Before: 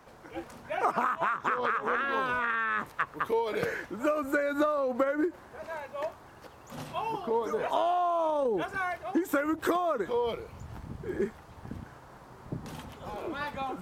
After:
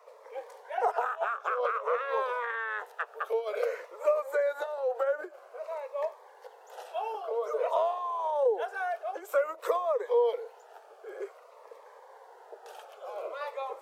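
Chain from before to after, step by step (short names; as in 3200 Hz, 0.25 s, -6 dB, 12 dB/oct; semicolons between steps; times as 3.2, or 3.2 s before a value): steep high-pass 450 Hz 72 dB/oct; tilt shelf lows +8 dB; cascading phaser falling 0.52 Hz; gain +2 dB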